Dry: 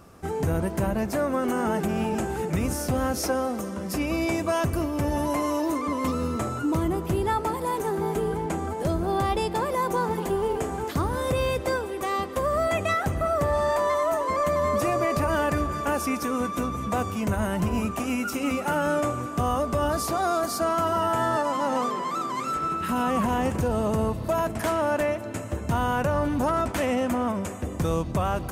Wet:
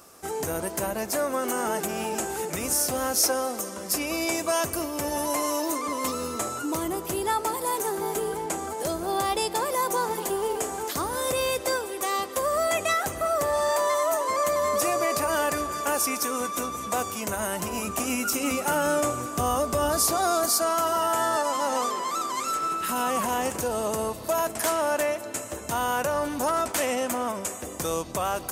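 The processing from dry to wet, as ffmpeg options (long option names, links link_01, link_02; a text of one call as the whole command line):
ffmpeg -i in.wav -filter_complex "[0:a]asettb=1/sr,asplit=3[link_01][link_02][link_03];[link_01]atrim=end=17.874[link_04];[link_02]atrim=start=17.87:end=20.51,asetpts=PTS-STARTPTS,afade=type=in:duration=0.004:curve=qsin,afade=type=out:start_time=2.636:duration=0.004:curve=qsin,lowshelf=frequency=210:gain=11[link_05];[link_03]atrim=start=20.506[link_06];[link_04][link_05]acrossfade=duration=0.004:curve1=hsin:curve2=qsin[link_07];[link_07][link_06]acrossfade=duration=0.004:curve1=qsin:curve2=hsin,bass=frequency=250:gain=-14,treble=frequency=4000:gain=11" out.wav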